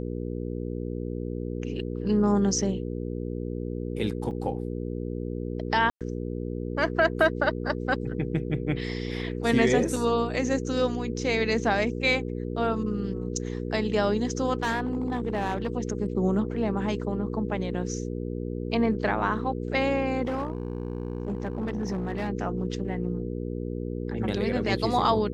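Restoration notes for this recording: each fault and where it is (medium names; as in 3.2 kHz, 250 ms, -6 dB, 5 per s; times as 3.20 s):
hum 60 Hz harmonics 8 -32 dBFS
4.31 s: dropout 4.2 ms
5.90–6.01 s: dropout 107 ms
9.96 s: dropout 3.1 ms
14.62–15.72 s: clipped -22.5 dBFS
20.25–22.30 s: clipped -25 dBFS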